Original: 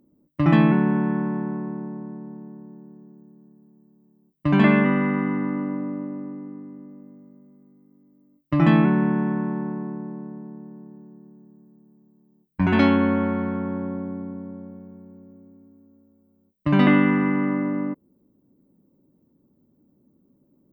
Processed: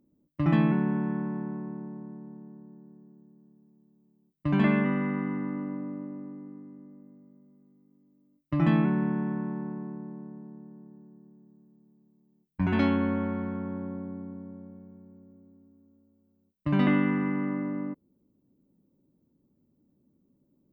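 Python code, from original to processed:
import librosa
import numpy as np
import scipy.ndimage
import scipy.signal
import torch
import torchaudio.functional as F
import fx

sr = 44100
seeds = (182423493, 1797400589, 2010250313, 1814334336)

y = fx.low_shelf(x, sr, hz=160.0, db=5.5)
y = F.gain(torch.from_numpy(y), -8.5).numpy()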